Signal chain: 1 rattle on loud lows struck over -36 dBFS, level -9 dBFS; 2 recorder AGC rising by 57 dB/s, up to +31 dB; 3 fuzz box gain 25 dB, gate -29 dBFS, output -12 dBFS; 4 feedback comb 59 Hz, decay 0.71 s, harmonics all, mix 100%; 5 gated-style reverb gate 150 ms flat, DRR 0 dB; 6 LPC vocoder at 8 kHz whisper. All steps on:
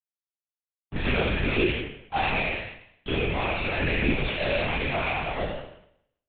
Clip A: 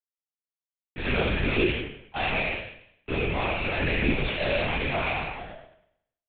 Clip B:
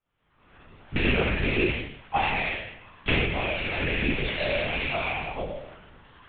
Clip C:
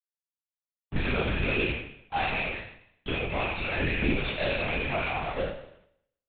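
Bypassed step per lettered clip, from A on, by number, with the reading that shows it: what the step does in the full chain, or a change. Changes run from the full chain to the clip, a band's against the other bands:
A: 2, momentary loudness spread change +2 LU; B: 3, distortion -4 dB; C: 5, loudness change -2.5 LU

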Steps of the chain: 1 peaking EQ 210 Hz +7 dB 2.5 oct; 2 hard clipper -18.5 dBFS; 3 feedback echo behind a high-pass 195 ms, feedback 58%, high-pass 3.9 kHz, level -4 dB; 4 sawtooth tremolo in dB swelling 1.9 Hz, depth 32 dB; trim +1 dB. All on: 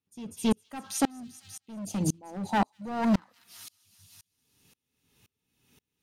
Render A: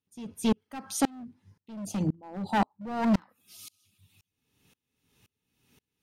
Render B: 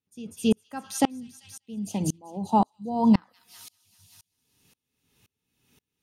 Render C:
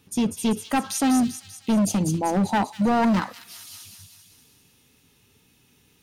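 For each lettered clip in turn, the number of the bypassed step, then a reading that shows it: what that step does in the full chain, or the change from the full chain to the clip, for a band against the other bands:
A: 3, momentary loudness spread change +1 LU; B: 2, distortion -8 dB; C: 4, crest factor change -6.0 dB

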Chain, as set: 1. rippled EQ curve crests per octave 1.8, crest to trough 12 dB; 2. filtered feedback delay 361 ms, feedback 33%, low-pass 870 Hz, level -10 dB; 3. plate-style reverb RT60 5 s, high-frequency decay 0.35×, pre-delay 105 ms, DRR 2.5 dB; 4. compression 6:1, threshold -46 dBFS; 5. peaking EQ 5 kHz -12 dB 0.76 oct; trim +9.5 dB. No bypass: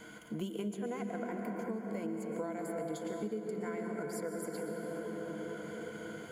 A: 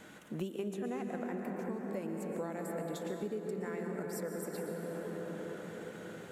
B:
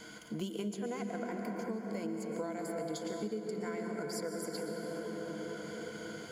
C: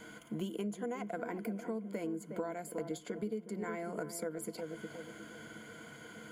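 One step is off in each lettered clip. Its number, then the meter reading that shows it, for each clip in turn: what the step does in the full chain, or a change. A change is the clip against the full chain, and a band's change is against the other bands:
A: 1, 125 Hz band +2.5 dB; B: 5, 4 kHz band +6.0 dB; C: 3, momentary loudness spread change +7 LU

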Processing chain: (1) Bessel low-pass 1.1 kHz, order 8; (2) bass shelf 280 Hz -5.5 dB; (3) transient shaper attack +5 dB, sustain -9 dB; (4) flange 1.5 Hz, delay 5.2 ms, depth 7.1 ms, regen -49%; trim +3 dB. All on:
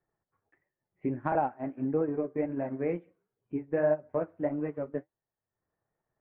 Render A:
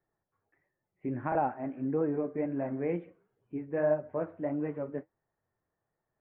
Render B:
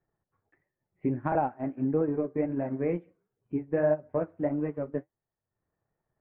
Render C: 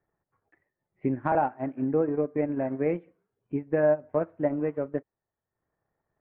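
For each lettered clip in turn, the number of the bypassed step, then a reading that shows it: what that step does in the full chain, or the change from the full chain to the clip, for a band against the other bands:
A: 3, loudness change -1.0 LU; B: 2, 125 Hz band +3.5 dB; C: 4, loudness change +4.0 LU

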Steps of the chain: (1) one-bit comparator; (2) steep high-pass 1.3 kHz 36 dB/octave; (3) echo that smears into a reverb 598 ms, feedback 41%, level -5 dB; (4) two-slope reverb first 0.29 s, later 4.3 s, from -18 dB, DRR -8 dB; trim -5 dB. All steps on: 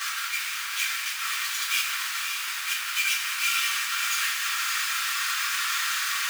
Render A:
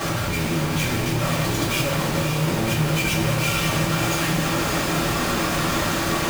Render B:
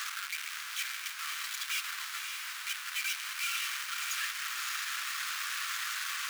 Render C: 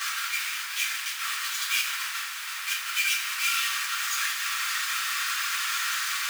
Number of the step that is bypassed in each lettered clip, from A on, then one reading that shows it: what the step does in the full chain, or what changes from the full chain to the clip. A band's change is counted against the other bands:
2, 1 kHz band +7.0 dB; 4, echo-to-direct 9.5 dB to -4.0 dB; 3, echo-to-direct 9.5 dB to 8.0 dB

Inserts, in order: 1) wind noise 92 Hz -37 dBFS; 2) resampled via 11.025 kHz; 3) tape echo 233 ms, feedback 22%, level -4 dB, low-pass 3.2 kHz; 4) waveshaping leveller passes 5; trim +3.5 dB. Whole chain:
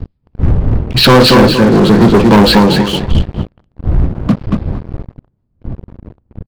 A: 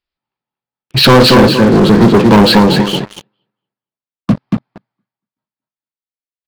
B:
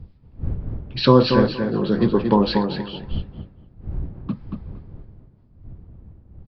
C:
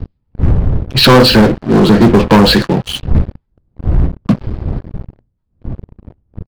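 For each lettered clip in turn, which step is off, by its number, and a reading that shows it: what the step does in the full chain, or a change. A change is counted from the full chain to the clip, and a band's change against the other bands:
1, 125 Hz band -2.5 dB; 4, crest factor change +12.0 dB; 3, momentary loudness spread change -1 LU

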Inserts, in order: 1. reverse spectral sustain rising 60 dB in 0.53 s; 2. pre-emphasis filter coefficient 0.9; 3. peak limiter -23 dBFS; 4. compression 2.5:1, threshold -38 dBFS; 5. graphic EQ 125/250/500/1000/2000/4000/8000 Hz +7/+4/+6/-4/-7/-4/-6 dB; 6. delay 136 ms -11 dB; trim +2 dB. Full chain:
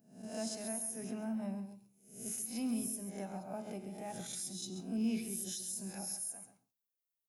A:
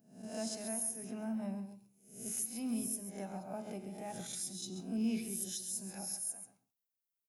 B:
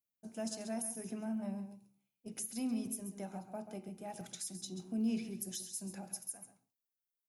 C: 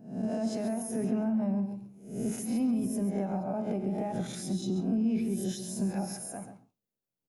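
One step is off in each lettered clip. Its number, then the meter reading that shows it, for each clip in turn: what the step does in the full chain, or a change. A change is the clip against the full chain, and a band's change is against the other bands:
3, 8 kHz band +1.5 dB; 1, 8 kHz band -2.0 dB; 2, 8 kHz band -12.0 dB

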